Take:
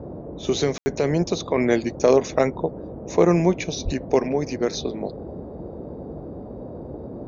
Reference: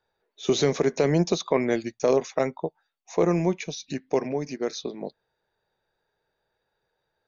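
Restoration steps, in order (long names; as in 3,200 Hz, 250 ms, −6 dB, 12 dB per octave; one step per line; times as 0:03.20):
0:03.84–0:03.96: high-pass filter 140 Hz 24 dB per octave
ambience match 0:00.78–0:00.86
noise reduction from a noise print 30 dB
0:01.58: level correction −5 dB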